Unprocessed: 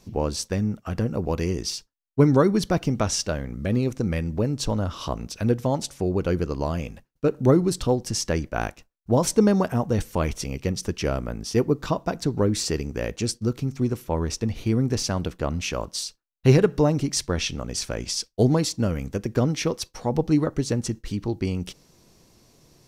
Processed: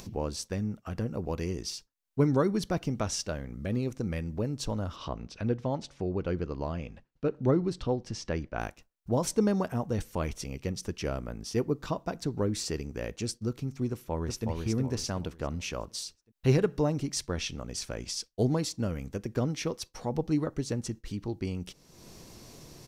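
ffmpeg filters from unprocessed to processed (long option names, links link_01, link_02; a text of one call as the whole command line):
ffmpeg -i in.wav -filter_complex "[0:a]asettb=1/sr,asplit=3[link_01][link_02][link_03];[link_01]atrim=end=4.964[link_04];[link_02]atrim=start=4.96:end=8.59,asetpts=PTS-STARTPTS,afade=type=in:duration=0.004:curve=qsin,afade=type=out:start_time=3.626:duration=0.004:curve=qsin,lowpass=4200[link_05];[link_03]atrim=start=8.586[link_06];[link_04][link_05]acrossfade=duration=0.004:curve1=hsin:curve2=qsin[link_07];[link_07][link_06]acrossfade=duration=0.004:curve1=qsin:curve2=hsin,asplit=2[link_08][link_09];[link_09]afade=type=in:start_time=13.89:duration=0.01,afade=type=out:start_time=14.46:duration=0.01,aecho=0:1:370|740|1110|1480|1850:0.668344|0.23392|0.0818721|0.0286552|0.0100293[link_10];[link_08][link_10]amix=inputs=2:normalize=0,acompressor=mode=upward:threshold=-28dB:ratio=2.5,volume=-7.5dB" out.wav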